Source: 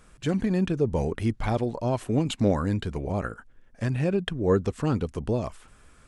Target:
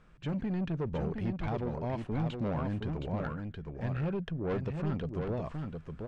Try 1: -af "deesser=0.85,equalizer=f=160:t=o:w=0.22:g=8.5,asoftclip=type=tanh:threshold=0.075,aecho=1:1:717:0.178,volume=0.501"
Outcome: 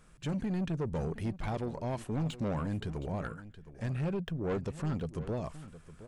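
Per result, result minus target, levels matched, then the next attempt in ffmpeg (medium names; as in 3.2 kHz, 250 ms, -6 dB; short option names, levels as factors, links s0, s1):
echo-to-direct -10 dB; 4 kHz band +2.5 dB
-af "deesser=0.85,equalizer=f=160:t=o:w=0.22:g=8.5,asoftclip=type=tanh:threshold=0.075,aecho=1:1:717:0.562,volume=0.501"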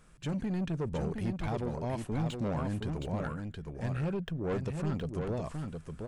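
4 kHz band +2.5 dB
-af "deesser=0.85,lowpass=3300,equalizer=f=160:t=o:w=0.22:g=8.5,asoftclip=type=tanh:threshold=0.075,aecho=1:1:717:0.562,volume=0.501"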